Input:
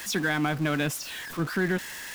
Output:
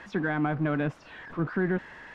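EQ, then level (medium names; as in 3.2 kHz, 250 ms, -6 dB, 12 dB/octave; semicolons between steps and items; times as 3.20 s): low-pass 1.4 kHz 12 dB/octave; 0.0 dB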